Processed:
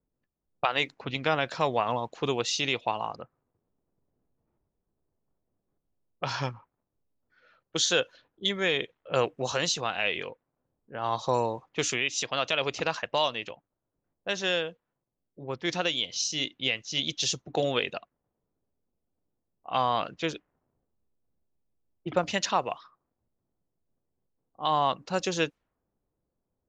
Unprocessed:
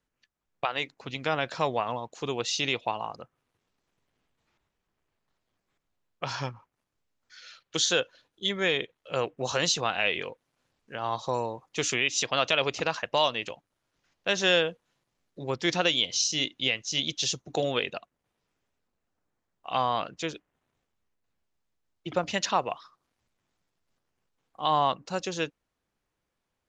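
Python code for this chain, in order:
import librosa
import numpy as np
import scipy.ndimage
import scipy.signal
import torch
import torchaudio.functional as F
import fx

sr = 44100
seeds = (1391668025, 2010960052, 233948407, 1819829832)

y = fx.rider(x, sr, range_db=10, speed_s=0.5)
y = fx.env_lowpass(y, sr, base_hz=570.0, full_db=-25.5)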